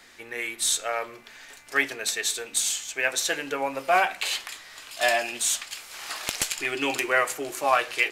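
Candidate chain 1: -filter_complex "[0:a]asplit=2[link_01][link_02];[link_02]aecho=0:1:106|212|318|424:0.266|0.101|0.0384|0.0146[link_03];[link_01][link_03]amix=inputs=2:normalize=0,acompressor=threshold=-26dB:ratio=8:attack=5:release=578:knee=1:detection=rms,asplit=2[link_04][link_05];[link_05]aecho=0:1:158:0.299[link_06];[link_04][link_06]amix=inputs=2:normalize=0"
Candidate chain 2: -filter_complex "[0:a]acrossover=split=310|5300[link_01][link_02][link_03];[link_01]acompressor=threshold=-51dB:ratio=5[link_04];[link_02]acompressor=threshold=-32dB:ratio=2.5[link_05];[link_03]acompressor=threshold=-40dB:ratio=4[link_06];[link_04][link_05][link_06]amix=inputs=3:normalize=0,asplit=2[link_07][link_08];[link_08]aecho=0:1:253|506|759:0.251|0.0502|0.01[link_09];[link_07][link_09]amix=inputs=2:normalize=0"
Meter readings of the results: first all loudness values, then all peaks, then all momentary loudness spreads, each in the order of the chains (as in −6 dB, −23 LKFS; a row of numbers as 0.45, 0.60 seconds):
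−33.0, −32.5 LKFS; −10.5, −9.0 dBFS; 6, 7 LU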